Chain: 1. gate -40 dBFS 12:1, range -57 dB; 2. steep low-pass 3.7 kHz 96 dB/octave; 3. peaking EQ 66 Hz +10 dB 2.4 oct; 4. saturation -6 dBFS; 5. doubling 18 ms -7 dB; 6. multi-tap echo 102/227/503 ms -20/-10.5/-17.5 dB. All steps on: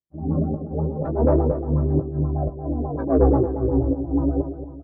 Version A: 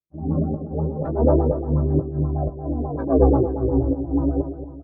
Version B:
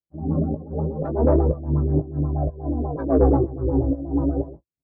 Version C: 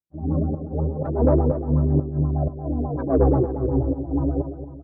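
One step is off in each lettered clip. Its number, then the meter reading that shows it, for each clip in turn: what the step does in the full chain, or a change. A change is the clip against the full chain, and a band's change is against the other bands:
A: 4, distortion -24 dB; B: 6, echo-to-direct -9.5 dB to none; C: 5, 125 Hz band +2.0 dB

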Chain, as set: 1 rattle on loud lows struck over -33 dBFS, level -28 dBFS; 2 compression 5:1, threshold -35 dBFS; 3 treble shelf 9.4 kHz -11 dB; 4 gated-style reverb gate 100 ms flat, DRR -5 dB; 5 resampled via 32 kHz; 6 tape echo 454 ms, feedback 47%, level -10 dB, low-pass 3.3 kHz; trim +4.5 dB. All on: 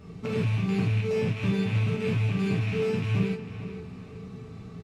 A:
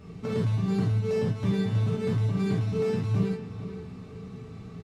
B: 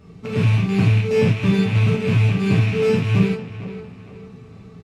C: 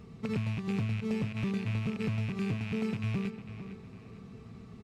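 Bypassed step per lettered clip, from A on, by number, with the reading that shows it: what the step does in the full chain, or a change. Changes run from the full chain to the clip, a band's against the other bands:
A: 1, 2 kHz band -7.5 dB; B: 2, momentary loudness spread change -4 LU; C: 4, loudness change -6.5 LU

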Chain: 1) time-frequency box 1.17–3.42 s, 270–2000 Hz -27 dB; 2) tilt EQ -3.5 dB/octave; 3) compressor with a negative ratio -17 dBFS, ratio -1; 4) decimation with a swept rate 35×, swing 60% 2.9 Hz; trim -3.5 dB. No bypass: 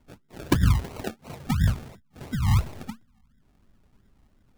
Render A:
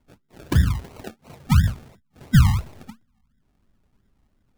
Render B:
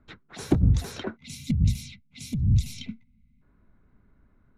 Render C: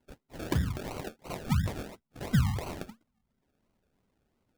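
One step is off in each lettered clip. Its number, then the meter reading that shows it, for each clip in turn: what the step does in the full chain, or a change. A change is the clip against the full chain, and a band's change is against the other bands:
3, momentary loudness spread change -4 LU; 4, distortion -8 dB; 2, 500 Hz band +2.5 dB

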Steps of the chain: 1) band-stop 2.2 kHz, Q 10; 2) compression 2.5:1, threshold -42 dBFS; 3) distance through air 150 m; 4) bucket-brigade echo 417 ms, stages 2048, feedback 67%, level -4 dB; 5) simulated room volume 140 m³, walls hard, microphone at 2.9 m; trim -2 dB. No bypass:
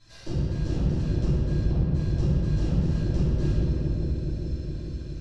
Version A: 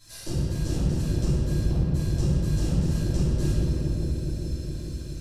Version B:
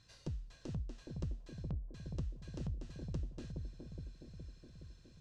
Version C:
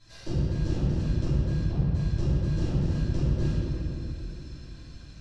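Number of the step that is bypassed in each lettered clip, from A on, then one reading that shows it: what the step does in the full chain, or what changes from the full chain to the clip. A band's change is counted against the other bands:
3, 4 kHz band +5.0 dB; 5, echo-to-direct 17.0 dB to -9.0 dB; 4, momentary loudness spread change +8 LU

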